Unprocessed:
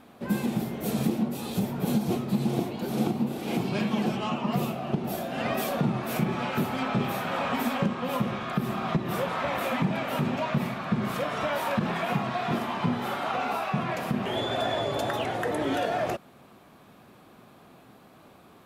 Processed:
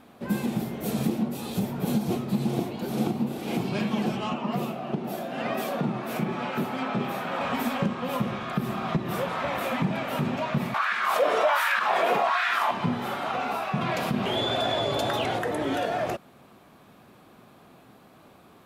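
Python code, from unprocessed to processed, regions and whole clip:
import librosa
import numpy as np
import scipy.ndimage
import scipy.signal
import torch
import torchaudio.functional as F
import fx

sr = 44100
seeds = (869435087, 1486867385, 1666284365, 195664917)

y = fx.chain(x, sr, fx.highpass(hz=160.0, slope=12),
    fx.high_shelf(hz=4000.0, db=-5.5), at=(4.33, 7.41))
y = fx.chain(y, sr, fx.filter_lfo_highpass(shape='sine', hz=1.3, low_hz=410.0, high_hz=1700.0, q=2.8),
    fx.env_flatten(amount_pct=50), at=(10.74, 12.71))
y = fx.chain(y, sr, fx.peak_eq(hz=3900.0, db=4.5, octaves=0.94),
    fx.notch(hz=1800.0, q=20.0),
    fx.env_flatten(amount_pct=50), at=(13.81, 15.39))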